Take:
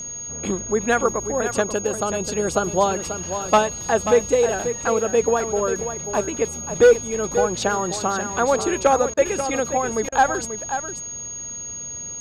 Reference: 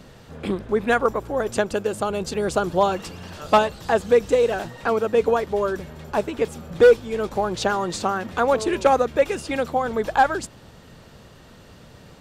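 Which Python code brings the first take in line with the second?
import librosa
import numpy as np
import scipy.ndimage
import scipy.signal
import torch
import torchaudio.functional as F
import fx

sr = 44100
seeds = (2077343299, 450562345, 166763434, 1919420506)

y = fx.fix_declick_ar(x, sr, threshold=6.5)
y = fx.notch(y, sr, hz=6600.0, q=30.0)
y = fx.fix_interpolate(y, sr, at_s=(9.14, 10.09), length_ms=31.0)
y = fx.fix_echo_inverse(y, sr, delay_ms=536, level_db=-9.5)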